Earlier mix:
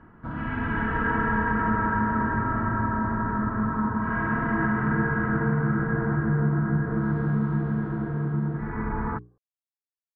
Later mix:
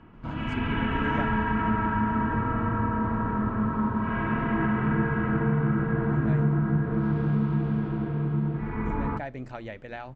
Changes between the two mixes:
speech: unmuted; first sound: add resonant high shelf 2100 Hz +6 dB, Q 3; second sound: entry +1.45 s

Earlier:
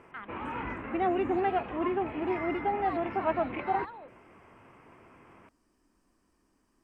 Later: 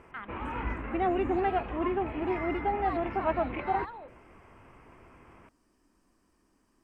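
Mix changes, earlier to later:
background: remove HPF 110 Hz 12 dB/oct; reverb: on, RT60 0.45 s

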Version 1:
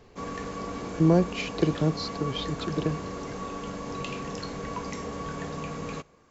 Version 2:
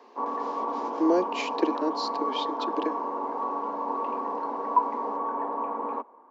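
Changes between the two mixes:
background: add synth low-pass 940 Hz, resonance Q 11; master: add steep high-pass 230 Hz 72 dB/oct

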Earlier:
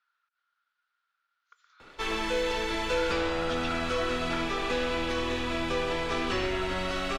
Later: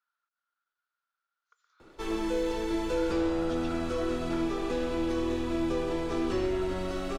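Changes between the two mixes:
background: add bell 340 Hz +8 dB 0.28 oct; master: add bell 2500 Hz -11 dB 2.6 oct

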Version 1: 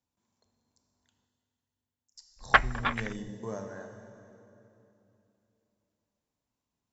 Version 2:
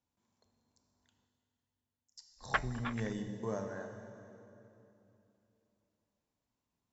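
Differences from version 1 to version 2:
background -11.5 dB; master: add high shelf 6800 Hz -5.5 dB

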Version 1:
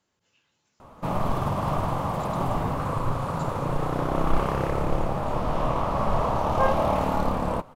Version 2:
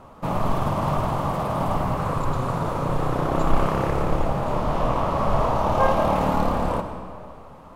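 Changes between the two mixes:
background: entry -0.80 s; reverb: on, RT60 2.2 s

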